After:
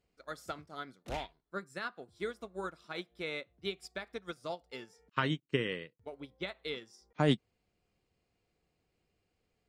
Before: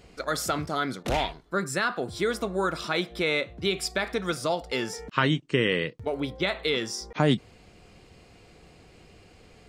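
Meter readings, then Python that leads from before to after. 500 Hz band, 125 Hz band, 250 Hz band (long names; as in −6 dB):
−11.0 dB, −8.5 dB, −9.5 dB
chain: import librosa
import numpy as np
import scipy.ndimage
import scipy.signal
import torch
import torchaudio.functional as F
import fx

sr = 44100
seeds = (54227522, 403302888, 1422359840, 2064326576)

y = fx.upward_expand(x, sr, threshold_db=-34.0, expansion=2.5)
y = y * 10.0 ** (-4.0 / 20.0)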